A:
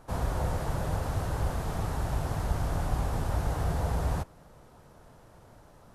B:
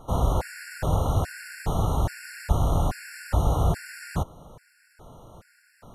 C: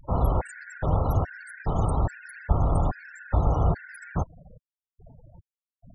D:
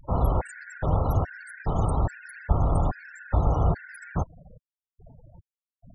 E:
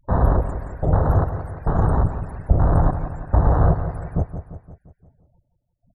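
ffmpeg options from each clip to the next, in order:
-af "afftfilt=real='re*gt(sin(2*PI*1.2*pts/sr)*(1-2*mod(floor(b*sr/1024/1400),2)),0)':imag='im*gt(sin(2*PI*1.2*pts/sr)*(1-2*mod(floor(b*sr/1024/1400),2)),0)':win_size=1024:overlap=0.75,volume=7.5dB"
-af "afftfilt=real='re*gte(hypot(re,im),0.0178)':imag='im*gte(hypot(re,im),0.0178)':win_size=1024:overlap=0.75,aexciter=amount=14.7:drive=5.2:freq=7.7k"
-af anull
-filter_complex "[0:a]afwtdn=0.0501,asplit=2[a][b];[b]aecho=0:1:173|346|519|692|865|1038:0.316|0.168|0.0888|0.0471|0.025|0.0132[c];[a][c]amix=inputs=2:normalize=0,volume=6dB"

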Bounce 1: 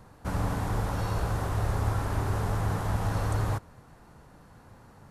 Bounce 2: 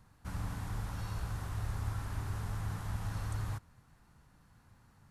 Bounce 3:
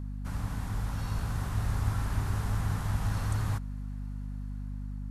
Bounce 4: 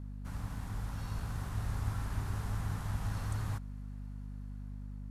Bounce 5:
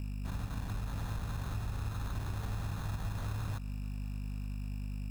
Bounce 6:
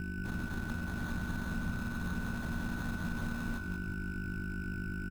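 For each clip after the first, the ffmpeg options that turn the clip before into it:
-af "equalizer=f=500:w=0.72:g=-11,volume=-7.5dB"
-af "dynaudnorm=f=480:g=5:m=4dB,aeval=exprs='val(0)+0.0126*(sin(2*PI*50*n/s)+sin(2*PI*2*50*n/s)/2+sin(2*PI*3*50*n/s)/3+sin(2*PI*4*50*n/s)/4+sin(2*PI*5*50*n/s)/5)':c=same,volume=2.5dB"
-af "aeval=exprs='sgn(val(0))*max(abs(val(0))-0.00133,0)':c=same,volume=-5.5dB"
-filter_complex "[0:a]asplit=2[a][b];[b]alimiter=level_in=5.5dB:limit=-24dB:level=0:latency=1:release=36,volume=-5.5dB,volume=-1dB[c];[a][c]amix=inputs=2:normalize=0,acompressor=threshold=-33dB:ratio=6,acrusher=samples=17:mix=1:aa=0.000001"
-filter_complex "[0:a]aeval=exprs='val(0)*sin(2*PI*130*n/s)':c=same,aeval=exprs='val(0)+0.00501*sin(2*PI*1500*n/s)':c=same,asplit=5[a][b][c][d][e];[b]adelay=181,afreqshift=-58,volume=-7dB[f];[c]adelay=362,afreqshift=-116,volume=-15.6dB[g];[d]adelay=543,afreqshift=-174,volume=-24.3dB[h];[e]adelay=724,afreqshift=-232,volume=-32.9dB[i];[a][f][g][h][i]amix=inputs=5:normalize=0,volume=2dB"

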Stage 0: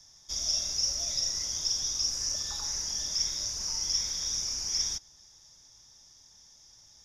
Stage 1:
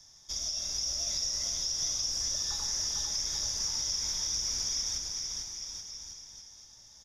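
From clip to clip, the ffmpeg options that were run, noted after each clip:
-filter_complex "[0:a]alimiter=level_in=0.5dB:limit=-24dB:level=0:latency=1:release=132,volume=-0.5dB,asplit=2[a][b];[b]aecho=0:1:450|832.5|1158|1434|1669:0.631|0.398|0.251|0.158|0.1[c];[a][c]amix=inputs=2:normalize=0"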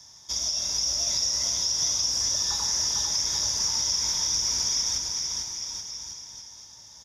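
-af "highpass=62,equalizer=f=960:w=7.5:g=8,volume=6.5dB"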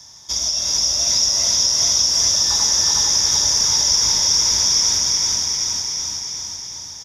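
-af "aecho=1:1:371|742|1113|1484|1855|2226|2597|2968:0.708|0.411|0.238|0.138|0.0801|0.0465|0.027|0.0156,volume=7dB"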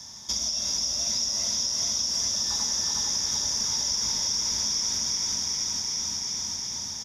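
-af "equalizer=f=220:w=3.7:g=11,acompressor=threshold=-28dB:ratio=3" -ar 44100 -c:a libvorbis -b:a 192k

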